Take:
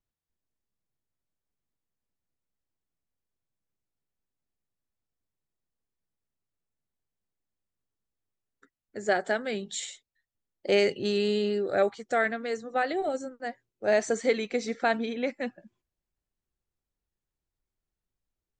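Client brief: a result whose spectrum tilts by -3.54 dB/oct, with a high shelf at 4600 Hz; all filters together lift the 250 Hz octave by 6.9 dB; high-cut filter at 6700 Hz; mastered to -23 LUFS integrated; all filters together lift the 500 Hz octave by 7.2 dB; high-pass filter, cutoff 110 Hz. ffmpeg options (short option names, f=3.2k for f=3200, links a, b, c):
-af "highpass=110,lowpass=6.7k,equalizer=f=250:t=o:g=7,equalizer=f=500:t=o:g=7,highshelf=f=4.6k:g=7,volume=-1dB"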